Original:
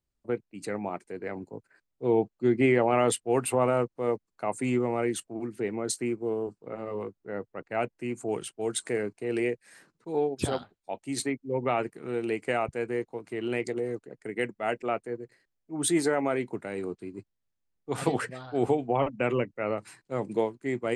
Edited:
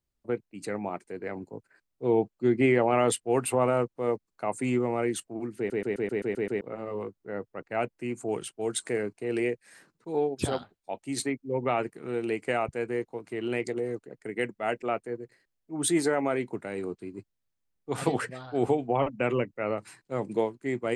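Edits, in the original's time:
5.57 s: stutter in place 0.13 s, 8 plays

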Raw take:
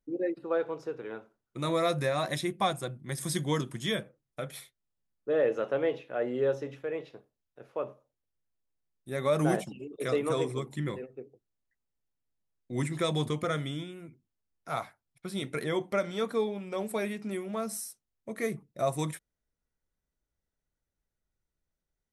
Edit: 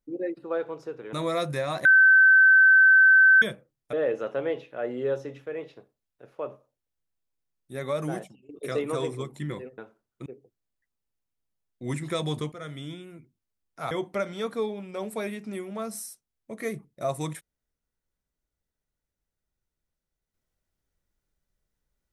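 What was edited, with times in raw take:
1.13–1.61 s: move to 11.15 s
2.33–3.90 s: bleep 1.54 kHz -12.5 dBFS
4.41–5.30 s: delete
9.10–9.86 s: fade out, to -19.5 dB
13.41–13.85 s: fade in, from -14.5 dB
14.80–15.69 s: delete

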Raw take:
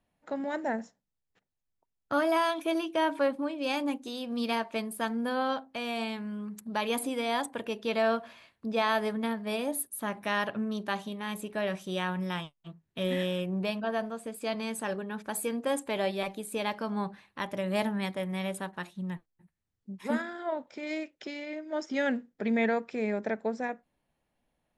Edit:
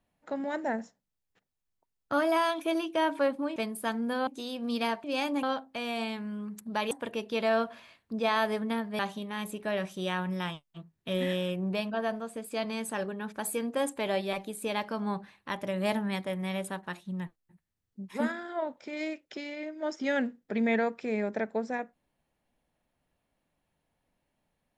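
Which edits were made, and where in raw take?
3.56–3.95 s: swap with 4.72–5.43 s
6.91–7.44 s: delete
9.52–10.89 s: delete

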